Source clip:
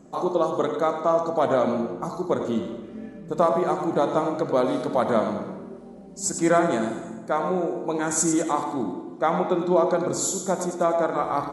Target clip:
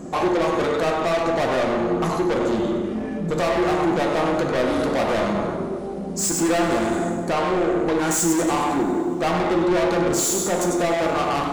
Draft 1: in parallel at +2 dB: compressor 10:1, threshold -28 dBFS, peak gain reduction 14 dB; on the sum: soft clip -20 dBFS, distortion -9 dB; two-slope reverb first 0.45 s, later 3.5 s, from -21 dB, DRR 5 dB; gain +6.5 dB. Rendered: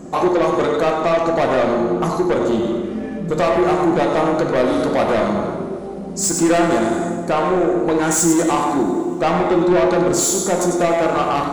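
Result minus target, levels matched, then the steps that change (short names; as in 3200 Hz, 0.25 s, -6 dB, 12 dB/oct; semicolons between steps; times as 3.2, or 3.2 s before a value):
soft clip: distortion -4 dB
change: soft clip -26.5 dBFS, distortion -5 dB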